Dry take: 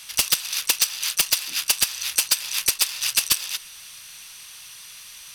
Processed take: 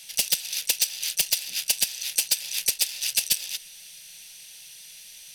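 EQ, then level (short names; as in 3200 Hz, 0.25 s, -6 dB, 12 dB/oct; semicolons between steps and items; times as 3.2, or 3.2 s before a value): fixed phaser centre 310 Hz, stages 6; -2.5 dB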